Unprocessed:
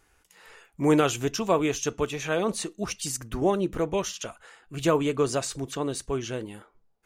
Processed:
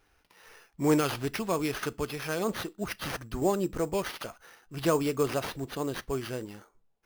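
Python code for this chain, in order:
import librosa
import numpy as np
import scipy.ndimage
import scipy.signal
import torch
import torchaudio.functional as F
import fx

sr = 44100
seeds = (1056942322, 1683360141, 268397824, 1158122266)

y = fx.dynamic_eq(x, sr, hz=650.0, q=0.82, threshold_db=-32.0, ratio=4.0, max_db=-5, at=(0.97, 2.41))
y = fx.sample_hold(y, sr, seeds[0], rate_hz=7700.0, jitter_pct=0)
y = y * 10.0 ** (-3.0 / 20.0)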